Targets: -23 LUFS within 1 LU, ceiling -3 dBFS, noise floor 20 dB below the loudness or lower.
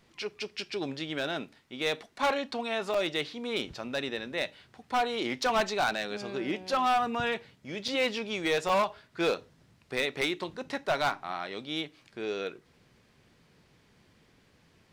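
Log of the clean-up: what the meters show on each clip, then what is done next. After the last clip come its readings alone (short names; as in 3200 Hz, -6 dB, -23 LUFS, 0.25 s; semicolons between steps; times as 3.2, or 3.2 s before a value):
clipped 1.3%; flat tops at -21.5 dBFS; dropouts 3; longest dropout 4.1 ms; loudness -31.5 LUFS; peak -21.5 dBFS; loudness target -23.0 LUFS
-> clip repair -21.5 dBFS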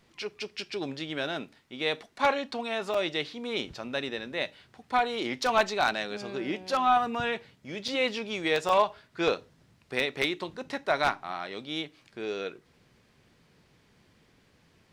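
clipped 0.0%; dropouts 3; longest dropout 4.1 ms
-> interpolate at 2.94/7.88/8.69, 4.1 ms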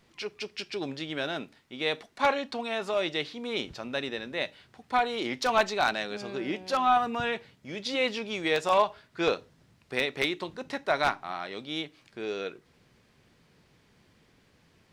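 dropouts 0; loudness -30.0 LUFS; peak -12.5 dBFS; loudness target -23.0 LUFS
-> gain +7 dB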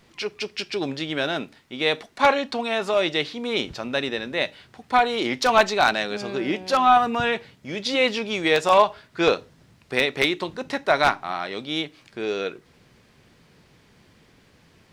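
loudness -23.0 LUFS; peak -5.5 dBFS; noise floor -57 dBFS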